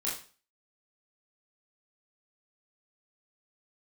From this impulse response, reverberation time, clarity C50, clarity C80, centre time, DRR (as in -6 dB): 0.40 s, 6.0 dB, 11.0 dB, 37 ms, -7.0 dB